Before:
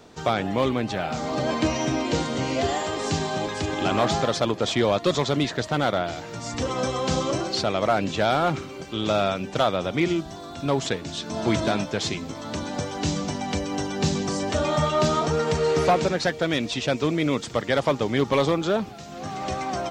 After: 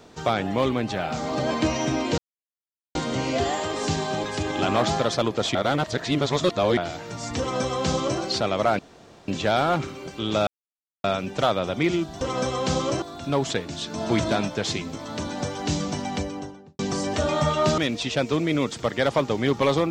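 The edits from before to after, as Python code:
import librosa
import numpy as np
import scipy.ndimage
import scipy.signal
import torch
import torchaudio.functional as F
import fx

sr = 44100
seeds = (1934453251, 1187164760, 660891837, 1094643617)

y = fx.studio_fade_out(x, sr, start_s=13.4, length_s=0.75)
y = fx.edit(y, sr, fx.insert_silence(at_s=2.18, length_s=0.77),
    fx.reverse_span(start_s=4.78, length_s=1.22),
    fx.duplicate(start_s=6.62, length_s=0.81, to_s=10.38),
    fx.insert_room_tone(at_s=8.02, length_s=0.49),
    fx.insert_silence(at_s=9.21, length_s=0.57),
    fx.cut(start_s=15.14, length_s=1.35), tone=tone)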